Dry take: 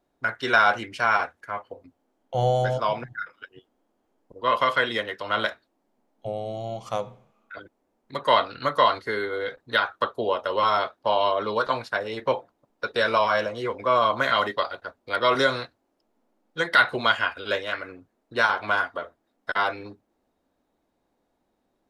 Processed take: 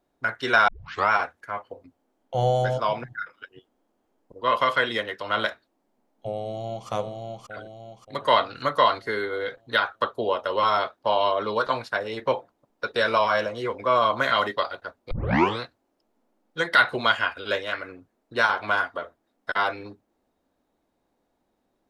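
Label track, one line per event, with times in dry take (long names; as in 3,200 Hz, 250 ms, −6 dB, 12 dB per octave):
0.680000	0.680000	tape start 0.42 s
6.330000	6.880000	delay throw 580 ms, feedback 45%, level −3.5 dB
15.110000	15.110000	tape start 0.49 s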